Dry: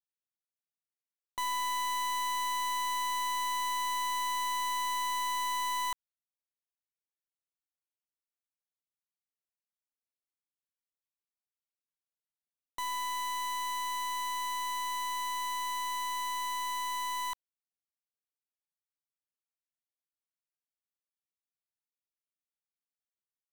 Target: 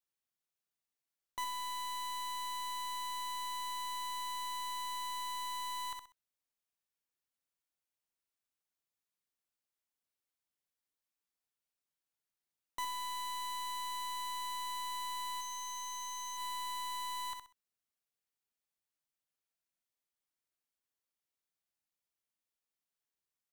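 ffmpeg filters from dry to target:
-filter_complex "[0:a]aecho=1:1:64|128|192:0.398|0.0836|0.0176,asettb=1/sr,asplit=3[s0][s1][s2];[s0]atrim=end=15.414[s3];[s1]atrim=start=15.41:end=16.37,asetpts=PTS-STARTPTS,afade=t=in:d=0.004:c=qsin,afade=t=out:st=0.956:d=0.004:c=qsin,aeval=exprs='val(0)+0.0141*sin(2*PI*6200*n/s)':c=same[s4];[s2]atrim=start=16.366[s5];[s3][s4]acrossfade=d=0.004:c1=hsin:c2=qsin[s6];[s6][s5]acrossfade=d=0.004:c1=qsin:c2=hsin,alimiter=level_in=5.01:limit=0.0631:level=0:latency=1:release=203,volume=0.2,volume=1.19"

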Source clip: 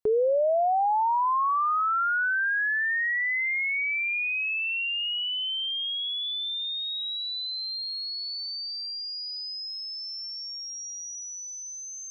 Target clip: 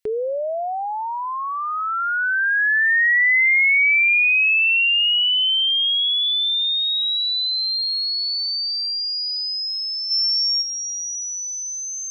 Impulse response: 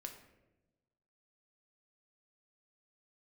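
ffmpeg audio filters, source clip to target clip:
-filter_complex "[0:a]highshelf=f=1500:t=q:w=1.5:g=9.5,asplit=3[s0][s1][s2];[s0]afade=t=out:st=10.1:d=0.02[s3];[s1]acontrast=86,afade=t=in:st=10.1:d=0.02,afade=t=out:st=10.61:d=0.02[s4];[s2]afade=t=in:st=10.61:d=0.02[s5];[s3][s4][s5]amix=inputs=3:normalize=0"

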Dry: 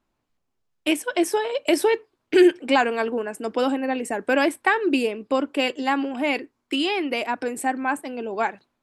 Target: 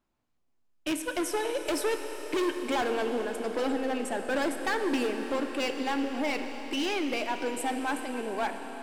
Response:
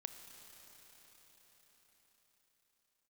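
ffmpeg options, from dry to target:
-filter_complex "[0:a]asoftclip=type=hard:threshold=0.0891[s0];[1:a]atrim=start_sample=2205[s1];[s0][s1]afir=irnorm=-1:irlink=0"

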